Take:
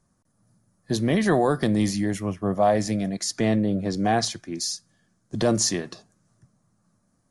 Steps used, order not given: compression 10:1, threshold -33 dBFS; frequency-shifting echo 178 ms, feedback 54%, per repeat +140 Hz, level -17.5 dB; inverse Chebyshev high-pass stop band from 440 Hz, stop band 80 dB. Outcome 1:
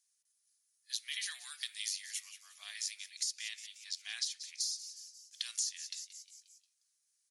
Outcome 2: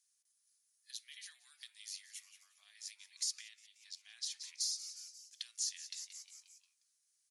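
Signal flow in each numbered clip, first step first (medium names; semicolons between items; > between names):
inverse Chebyshev high-pass > frequency-shifting echo > compression; frequency-shifting echo > compression > inverse Chebyshev high-pass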